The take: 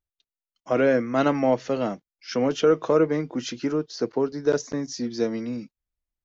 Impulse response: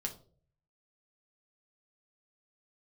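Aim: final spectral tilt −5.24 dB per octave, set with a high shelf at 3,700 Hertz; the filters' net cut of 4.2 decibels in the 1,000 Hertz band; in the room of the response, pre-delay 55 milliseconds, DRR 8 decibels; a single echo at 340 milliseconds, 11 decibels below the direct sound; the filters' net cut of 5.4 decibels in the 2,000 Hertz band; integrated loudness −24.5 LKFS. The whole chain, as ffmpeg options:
-filter_complex "[0:a]equalizer=frequency=1000:width_type=o:gain=-4.5,equalizer=frequency=2000:width_type=o:gain=-7.5,highshelf=frequency=3700:gain=7,aecho=1:1:340:0.282,asplit=2[link_01][link_02];[1:a]atrim=start_sample=2205,adelay=55[link_03];[link_02][link_03]afir=irnorm=-1:irlink=0,volume=-8dB[link_04];[link_01][link_04]amix=inputs=2:normalize=0"

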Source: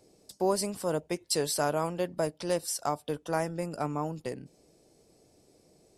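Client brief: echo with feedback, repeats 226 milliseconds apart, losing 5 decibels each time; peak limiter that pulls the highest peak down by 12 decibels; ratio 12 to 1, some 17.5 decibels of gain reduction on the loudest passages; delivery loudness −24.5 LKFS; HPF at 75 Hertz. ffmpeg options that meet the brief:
ffmpeg -i in.wav -af "highpass=75,acompressor=threshold=-41dB:ratio=12,alimiter=level_in=15dB:limit=-24dB:level=0:latency=1,volume=-15dB,aecho=1:1:226|452|678|904|1130|1356|1582:0.562|0.315|0.176|0.0988|0.0553|0.031|0.0173,volume=24.5dB" out.wav

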